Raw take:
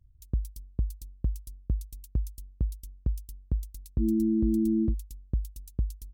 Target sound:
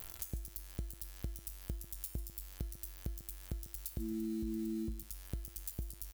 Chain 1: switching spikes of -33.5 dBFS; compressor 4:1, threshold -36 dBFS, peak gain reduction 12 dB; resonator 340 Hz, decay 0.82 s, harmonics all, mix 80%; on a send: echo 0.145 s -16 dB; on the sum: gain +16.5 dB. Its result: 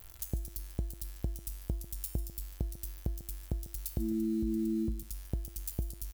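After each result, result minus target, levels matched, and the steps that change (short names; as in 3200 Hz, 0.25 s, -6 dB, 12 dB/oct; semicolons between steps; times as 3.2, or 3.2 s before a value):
compressor: peak gain reduction -6.5 dB; switching spikes: distortion -6 dB
change: compressor 4:1, threshold -44.5 dBFS, peak gain reduction 18.5 dB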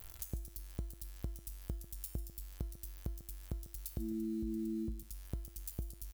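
switching spikes: distortion -6 dB
change: switching spikes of -27 dBFS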